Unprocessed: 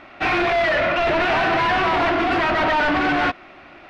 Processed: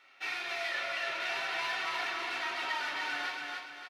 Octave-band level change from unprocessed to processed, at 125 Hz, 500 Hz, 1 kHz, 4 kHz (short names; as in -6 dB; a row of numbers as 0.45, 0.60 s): under -30 dB, -23.0 dB, -18.0 dB, -8.5 dB